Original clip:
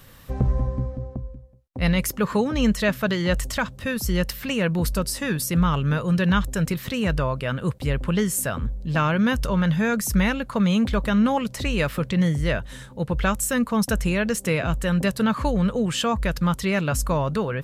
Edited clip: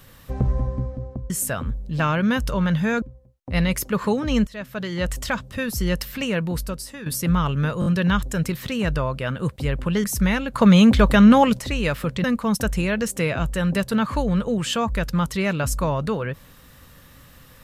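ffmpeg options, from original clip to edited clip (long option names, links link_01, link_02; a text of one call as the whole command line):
ffmpeg -i in.wav -filter_complex "[0:a]asplit=12[link_01][link_02][link_03][link_04][link_05][link_06][link_07][link_08][link_09][link_10][link_11][link_12];[link_01]atrim=end=1.302[link_13];[link_02]atrim=start=8.258:end=9.982[link_14];[link_03]atrim=start=1.298:end=2.75,asetpts=PTS-STARTPTS,afade=type=out:start_time=1.448:duration=0.004:curve=hsin:silence=0.11885[link_15];[link_04]atrim=start=2.75:end=5.34,asetpts=PTS-STARTPTS,afade=type=in:duration=0.79:silence=0.11885,afade=type=out:start_time=1.77:duration=0.82:silence=0.223872[link_16];[link_05]atrim=start=5.34:end=6.102,asetpts=PTS-STARTPTS,afade=type=in:duration=0.004:curve=hsin:silence=0.223872[link_17];[link_06]atrim=start=6.078:end=6.102[link_18];[link_07]atrim=start=6.078:end=6.102[link_19];[link_08]atrim=start=6.078:end=8.262[link_20];[link_09]atrim=start=9.978:end=10.482[link_21];[link_10]atrim=start=10.478:end=11.532,asetpts=PTS-STARTPTS,volume=7.5dB[link_22];[link_11]atrim=start=11.528:end=12.182[link_23];[link_12]atrim=start=13.518[link_24];[link_13][link_14]acrossfade=duration=0.004:curve1=hsin:curve2=hsin[link_25];[link_15][link_16][link_17]concat=n=3:v=0:a=1[link_26];[link_25][link_26]acrossfade=duration=0.004:curve1=hsin:curve2=hsin[link_27];[link_27][link_18]acrossfade=duration=0.004:curve1=hsin:curve2=hsin[link_28];[link_28][link_19]acrossfade=duration=0.004:curve1=hsin:curve2=hsin[link_29];[link_29][link_20]acrossfade=duration=0.004:curve1=hsin:curve2=hsin[link_30];[link_30][link_21]acrossfade=duration=0.004:curve1=hsin:curve2=hsin[link_31];[link_31][link_22]acrossfade=duration=0.004:curve1=hsin:curve2=hsin[link_32];[link_32][link_23]acrossfade=duration=0.004:curve1=hsin:curve2=hsin[link_33];[link_33][link_24]acrossfade=duration=0.004:curve1=hsin:curve2=hsin" out.wav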